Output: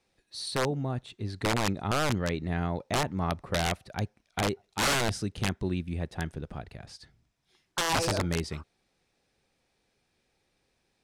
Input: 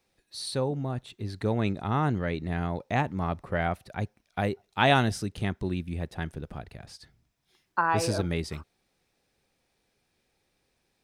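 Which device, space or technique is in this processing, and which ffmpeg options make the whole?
overflowing digital effects unit: -af "aeval=exprs='(mod(9.44*val(0)+1,2)-1)/9.44':c=same,lowpass=9600"

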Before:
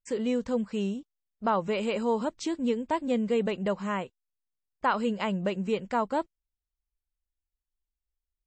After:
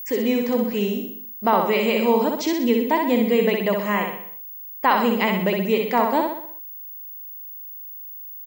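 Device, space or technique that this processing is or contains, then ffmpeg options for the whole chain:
old television with a line whistle: -af "highpass=180,highpass=160,equalizer=f=550:t=q:w=4:g=-4,equalizer=f=1400:t=q:w=4:g=-8,equalizer=f=2000:t=q:w=4:g=6,lowpass=f=6900:w=0.5412,lowpass=f=6900:w=1.3066,aeval=exprs='val(0)+0.01*sin(2*PI*15625*n/s)':c=same,aecho=1:1:63|126|189|252|315|378:0.631|0.315|0.158|0.0789|0.0394|0.0197,volume=2.66"

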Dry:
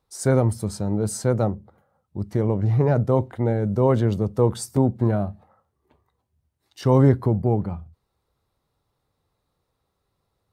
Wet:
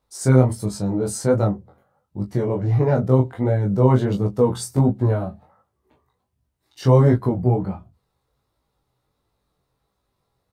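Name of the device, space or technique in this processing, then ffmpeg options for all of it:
double-tracked vocal: -filter_complex "[0:a]asplit=2[s0][s1];[s1]adelay=16,volume=0.596[s2];[s0][s2]amix=inputs=2:normalize=0,flanger=delay=19:depth=4.4:speed=1.4,volume=1.5"

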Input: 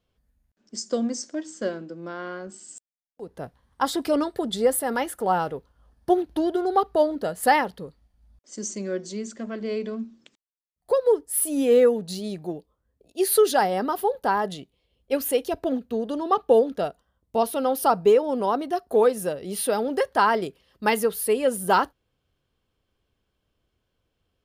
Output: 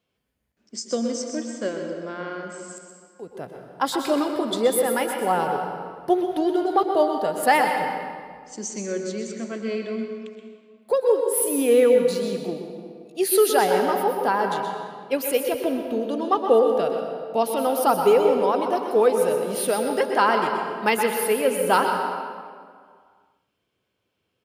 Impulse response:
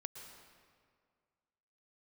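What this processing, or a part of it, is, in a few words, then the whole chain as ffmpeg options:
PA in a hall: -filter_complex "[0:a]highpass=140,equalizer=f=2400:t=o:w=0.5:g=5,aecho=1:1:126:0.316[s0];[1:a]atrim=start_sample=2205[s1];[s0][s1]afir=irnorm=-1:irlink=0,volume=1.68"

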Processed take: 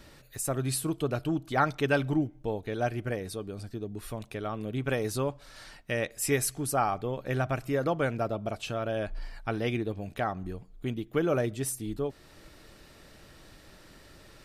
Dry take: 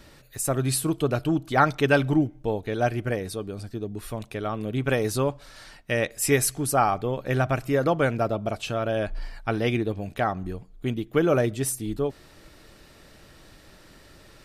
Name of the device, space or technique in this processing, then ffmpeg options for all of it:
parallel compression: -filter_complex "[0:a]asplit=2[s0][s1];[s1]acompressor=threshold=0.0141:ratio=6,volume=0.668[s2];[s0][s2]amix=inputs=2:normalize=0,volume=0.473"

